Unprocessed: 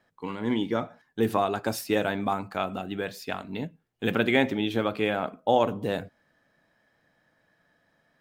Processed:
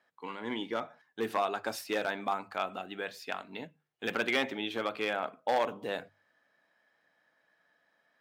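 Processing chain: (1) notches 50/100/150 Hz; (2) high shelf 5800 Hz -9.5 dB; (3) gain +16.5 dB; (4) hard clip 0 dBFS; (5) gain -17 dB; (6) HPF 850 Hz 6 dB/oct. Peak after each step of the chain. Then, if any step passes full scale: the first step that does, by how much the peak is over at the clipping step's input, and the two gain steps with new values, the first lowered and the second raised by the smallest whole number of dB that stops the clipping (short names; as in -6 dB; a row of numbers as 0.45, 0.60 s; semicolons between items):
-8.0, -8.5, +8.0, 0.0, -17.0, -14.5 dBFS; step 3, 8.0 dB; step 3 +8.5 dB, step 5 -9 dB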